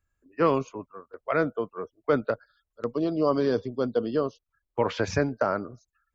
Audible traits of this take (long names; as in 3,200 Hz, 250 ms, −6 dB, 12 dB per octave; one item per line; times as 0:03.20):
background noise floor −84 dBFS
spectral slope −3.5 dB per octave